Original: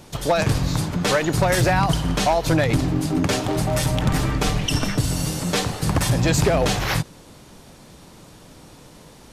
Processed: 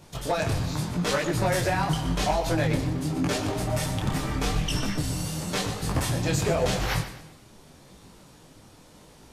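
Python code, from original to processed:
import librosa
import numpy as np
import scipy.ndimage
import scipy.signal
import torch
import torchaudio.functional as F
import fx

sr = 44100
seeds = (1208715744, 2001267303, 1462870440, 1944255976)

y = fx.echo_feedback(x, sr, ms=121, feedback_pct=41, wet_db=-11.5)
y = fx.detune_double(y, sr, cents=30)
y = y * 10.0 ** (-2.5 / 20.0)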